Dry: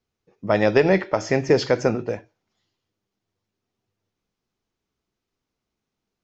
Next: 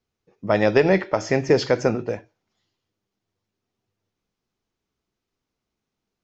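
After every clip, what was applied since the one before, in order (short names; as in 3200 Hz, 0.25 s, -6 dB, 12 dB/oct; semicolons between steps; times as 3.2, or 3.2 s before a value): nothing audible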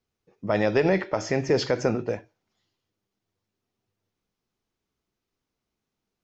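limiter -9.5 dBFS, peak gain reduction 4.5 dB; gain -1.5 dB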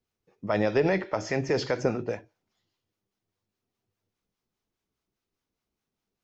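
harmonic tremolo 4.9 Hz, depth 50%, crossover 640 Hz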